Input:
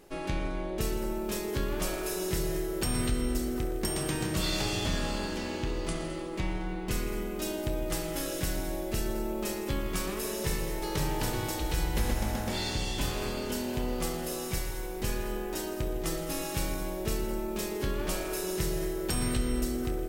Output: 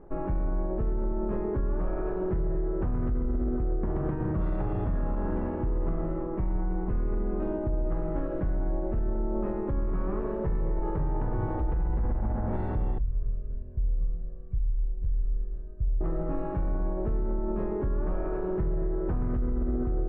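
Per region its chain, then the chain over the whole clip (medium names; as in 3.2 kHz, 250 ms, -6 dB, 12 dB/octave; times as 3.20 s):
12.98–16.01 s: amplifier tone stack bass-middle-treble 10-0-1 + comb 1.8 ms, depth 75%
whole clip: low-pass 1.3 kHz 24 dB/octave; bass shelf 110 Hz +10.5 dB; peak limiter -24 dBFS; trim +3 dB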